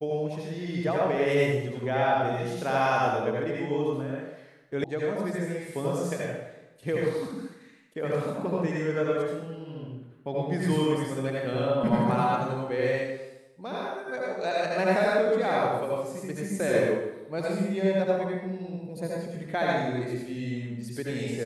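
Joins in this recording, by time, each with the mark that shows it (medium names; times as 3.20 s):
4.84 s: sound stops dead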